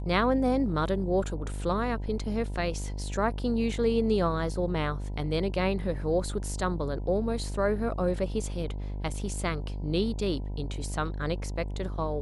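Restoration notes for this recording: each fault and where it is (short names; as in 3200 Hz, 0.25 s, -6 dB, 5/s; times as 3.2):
buzz 50 Hz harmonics 20 -34 dBFS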